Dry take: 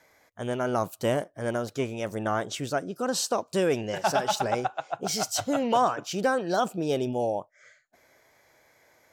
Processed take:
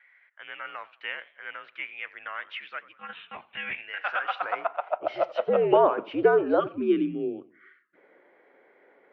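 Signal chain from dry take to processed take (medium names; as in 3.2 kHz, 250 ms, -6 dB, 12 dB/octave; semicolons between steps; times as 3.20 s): high-pass sweep 2.1 kHz -> 440 Hz, 3.83–5.72 s; 2.93–3.78 s: monotone LPC vocoder at 8 kHz 290 Hz; mistuned SSB -79 Hz 200–2900 Hz; 6.60–7.96 s: time-frequency box 390–1100 Hz -24 dB; modulated delay 89 ms, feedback 37%, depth 182 cents, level -20 dB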